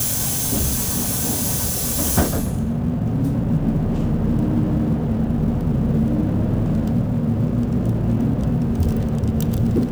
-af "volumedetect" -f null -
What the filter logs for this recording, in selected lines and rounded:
mean_volume: -19.5 dB
max_volume: -3.9 dB